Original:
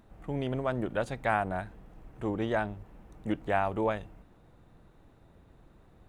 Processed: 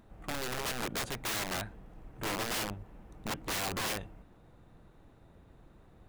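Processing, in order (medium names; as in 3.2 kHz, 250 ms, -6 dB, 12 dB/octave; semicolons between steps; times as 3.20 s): dynamic bell 1.7 kHz, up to +3 dB, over -40 dBFS, Q 0.71; integer overflow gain 29 dB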